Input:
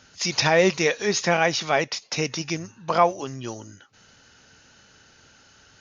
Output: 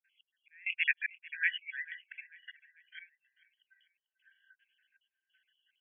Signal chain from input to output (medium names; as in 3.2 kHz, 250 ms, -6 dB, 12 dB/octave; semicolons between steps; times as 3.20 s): random holes in the spectrogram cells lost 50%; spectral noise reduction 14 dB; slow attack 220 ms; trance gate "x..xx.xxxx.xx" 68 bpm -24 dB; brick-wall FIR band-pass 1.5–3.4 kHz; feedback delay 443 ms, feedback 43%, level -20 dB